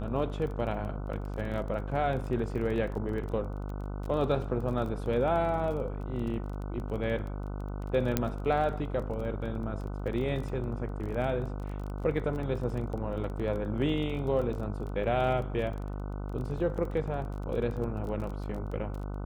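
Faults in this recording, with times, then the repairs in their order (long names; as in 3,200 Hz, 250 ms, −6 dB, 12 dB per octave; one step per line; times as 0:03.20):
mains buzz 50 Hz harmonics 30 −36 dBFS
surface crackle 22 per second −37 dBFS
0:08.17: click −11 dBFS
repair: click removal
hum removal 50 Hz, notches 30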